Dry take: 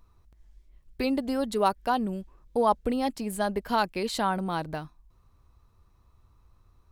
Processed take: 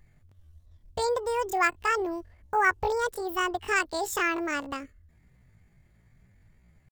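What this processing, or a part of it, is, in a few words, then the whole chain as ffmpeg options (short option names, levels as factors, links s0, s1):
chipmunk voice: -af "asetrate=78577,aresample=44100,atempo=0.561231"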